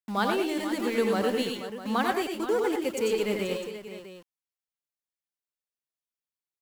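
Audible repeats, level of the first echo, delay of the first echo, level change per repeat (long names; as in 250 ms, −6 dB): 4, −7.0 dB, 89 ms, repeats not evenly spaced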